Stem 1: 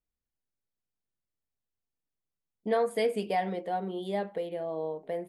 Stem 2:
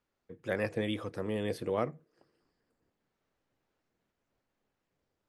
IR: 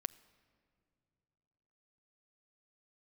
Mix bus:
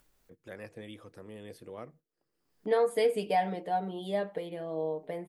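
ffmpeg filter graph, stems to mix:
-filter_complex "[0:a]highshelf=frequency=7300:gain=-6.5,aecho=1:1:6.7:0.52,volume=-1dB[link_01];[1:a]volume=-12.5dB[link_02];[link_01][link_02]amix=inputs=2:normalize=0,agate=range=-13dB:threshold=-58dB:ratio=16:detection=peak,highshelf=frequency=7600:gain=9,acompressor=mode=upward:threshold=-45dB:ratio=2.5"

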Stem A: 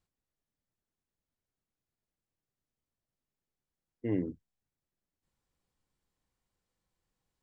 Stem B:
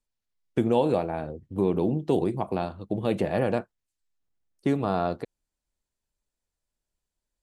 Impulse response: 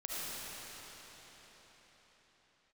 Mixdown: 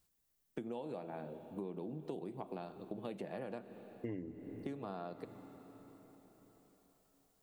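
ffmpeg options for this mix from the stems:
-filter_complex "[0:a]aemphasis=mode=production:type=50kf,volume=2dB,asplit=2[link_01][link_02];[link_02]volume=-16.5dB[link_03];[1:a]highpass=frequency=140:width=0.5412,highpass=frequency=140:width=1.3066,volume=-11dB,asplit=2[link_04][link_05];[link_05]volume=-18dB[link_06];[2:a]atrim=start_sample=2205[link_07];[link_03][link_06]amix=inputs=2:normalize=0[link_08];[link_08][link_07]afir=irnorm=-1:irlink=0[link_09];[link_01][link_04][link_09]amix=inputs=3:normalize=0,acompressor=threshold=-39dB:ratio=10"

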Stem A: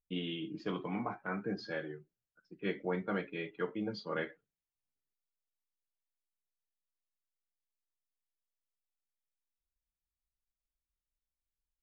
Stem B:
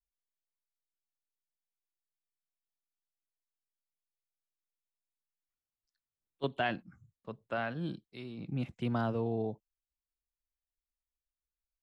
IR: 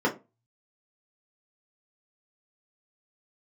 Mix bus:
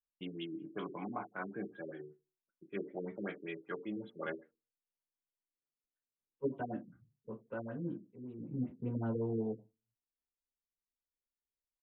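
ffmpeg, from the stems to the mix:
-filter_complex "[0:a]aemphasis=mode=production:type=bsi,agate=range=-33dB:threshold=-54dB:ratio=3:detection=peak,adelay=100,volume=-0.5dB,asplit=2[link_01][link_02];[link_02]volume=-23dB[link_03];[1:a]volume=-15dB,asplit=2[link_04][link_05];[link_05]volume=-4.5dB[link_06];[2:a]atrim=start_sample=2205[link_07];[link_03][link_06]amix=inputs=2:normalize=0[link_08];[link_08][link_07]afir=irnorm=-1:irlink=0[link_09];[link_01][link_04][link_09]amix=inputs=3:normalize=0,highshelf=frequency=2100:gain=-6,afftfilt=real='re*lt(b*sr/1024,450*pow(4100/450,0.5+0.5*sin(2*PI*5.2*pts/sr)))':imag='im*lt(b*sr/1024,450*pow(4100/450,0.5+0.5*sin(2*PI*5.2*pts/sr)))':win_size=1024:overlap=0.75"

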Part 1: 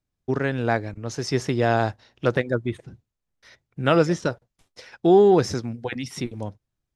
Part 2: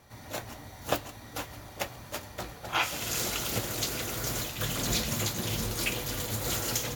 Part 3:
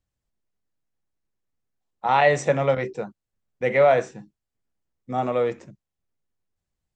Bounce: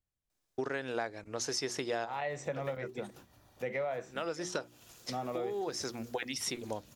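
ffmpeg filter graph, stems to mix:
ffmpeg -i stem1.wav -i stem2.wav -i stem3.wav -filter_complex "[0:a]bass=frequency=250:gain=-15,treble=frequency=4000:gain=6,bandreject=frequency=60:width_type=h:width=6,bandreject=frequency=120:width_type=h:width=6,bandreject=frequency=180:width_type=h:width=6,bandreject=frequency=240:width_type=h:width=6,bandreject=frequency=300:width_type=h:width=6,bandreject=frequency=360:width_type=h:width=6,adelay=300,volume=1.5dB[link_01];[1:a]bandreject=frequency=2100:width=7.9,acompressor=threshold=-40dB:ratio=4,adelay=1800,volume=-16.5dB[link_02];[2:a]volume=-9dB,asplit=2[link_03][link_04];[link_04]apad=whole_len=319883[link_05];[link_01][link_05]sidechaincompress=threshold=-45dB:ratio=8:attack=34:release=497[link_06];[link_06][link_02][link_03]amix=inputs=3:normalize=0,acompressor=threshold=-33dB:ratio=5" out.wav

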